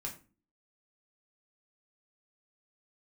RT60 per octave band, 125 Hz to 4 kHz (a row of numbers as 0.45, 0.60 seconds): 0.50, 0.60, 0.40, 0.30, 0.30, 0.25 seconds